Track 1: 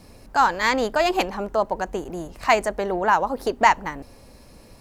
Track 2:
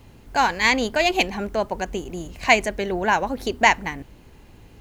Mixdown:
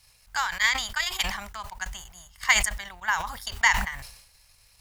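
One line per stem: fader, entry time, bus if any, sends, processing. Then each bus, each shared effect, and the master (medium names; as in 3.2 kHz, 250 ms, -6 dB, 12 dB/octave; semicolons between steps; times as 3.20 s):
-2.0 dB, 0.00 s, no send, high-pass 1.3 kHz 6 dB/octave
-9.5 dB, 0.00 s, no send, none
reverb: none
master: amplifier tone stack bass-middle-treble 10-0-10; transient shaper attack +8 dB, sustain -7 dB; decay stretcher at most 67 dB/s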